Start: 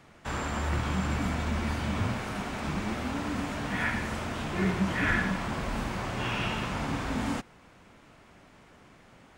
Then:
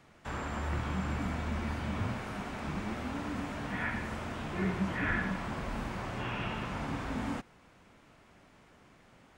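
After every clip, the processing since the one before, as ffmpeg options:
ffmpeg -i in.wav -filter_complex "[0:a]acrossover=split=2800[link_01][link_02];[link_02]acompressor=threshold=-48dB:ratio=4:attack=1:release=60[link_03];[link_01][link_03]amix=inputs=2:normalize=0,volume=-4.5dB" out.wav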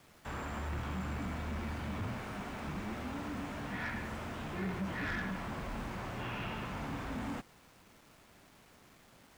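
ffmpeg -i in.wav -af "asoftclip=type=tanh:threshold=-29.5dB,acrusher=bits=9:mix=0:aa=0.000001,volume=-2dB" out.wav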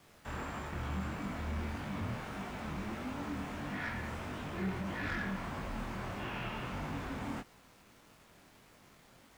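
ffmpeg -i in.wav -af "flanger=delay=19.5:depth=6.4:speed=1.6,volume=3dB" out.wav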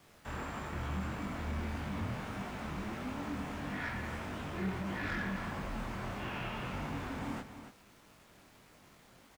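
ffmpeg -i in.wav -af "aecho=1:1:284:0.299" out.wav

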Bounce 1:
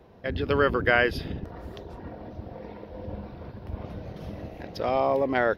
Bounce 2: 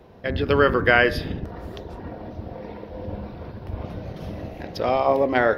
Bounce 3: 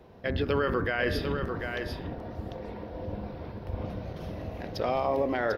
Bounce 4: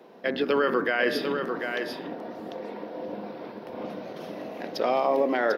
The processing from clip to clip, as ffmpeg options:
ffmpeg -i in.wav -af "bandreject=frequency=67.02:width_type=h:width=4,bandreject=frequency=134.04:width_type=h:width=4,bandreject=frequency=201.06:width_type=h:width=4,bandreject=frequency=268.08:width_type=h:width=4,bandreject=frequency=335.1:width_type=h:width=4,bandreject=frequency=402.12:width_type=h:width=4,bandreject=frequency=469.14:width_type=h:width=4,bandreject=frequency=536.16:width_type=h:width=4,bandreject=frequency=603.18:width_type=h:width=4,bandreject=frequency=670.2:width_type=h:width=4,bandreject=frequency=737.22:width_type=h:width=4,bandreject=frequency=804.24:width_type=h:width=4,bandreject=frequency=871.26:width_type=h:width=4,bandreject=frequency=938.28:width_type=h:width=4,bandreject=frequency=1005.3:width_type=h:width=4,bandreject=frequency=1072.32:width_type=h:width=4,bandreject=frequency=1139.34:width_type=h:width=4,bandreject=frequency=1206.36:width_type=h:width=4,bandreject=frequency=1273.38:width_type=h:width=4,bandreject=frequency=1340.4:width_type=h:width=4,bandreject=frequency=1407.42:width_type=h:width=4,bandreject=frequency=1474.44:width_type=h:width=4,bandreject=frequency=1541.46:width_type=h:width=4,bandreject=frequency=1608.48:width_type=h:width=4,bandreject=frequency=1675.5:width_type=h:width=4,bandreject=frequency=1742.52:width_type=h:width=4,bandreject=frequency=1809.54:width_type=h:width=4,bandreject=frequency=1876.56:width_type=h:width=4,bandreject=frequency=1943.58:width_type=h:width=4,bandreject=frequency=2010.6:width_type=h:width=4,bandreject=frequency=2077.62:width_type=h:width=4,bandreject=frequency=2144.64:width_type=h:width=4,bandreject=frequency=2211.66:width_type=h:width=4,volume=5dB" out.wav
ffmpeg -i in.wav -af "alimiter=limit=-14dB:level=0:latency=1:release=36,aecho=1:1:746:0.501,volume=-4dB" out.wav
ffmpeg -i in.wav -af "highpass=frequency=220:width=0.5412,highpass=frequency=220:width=1.3066,volume=4dB" out.wav

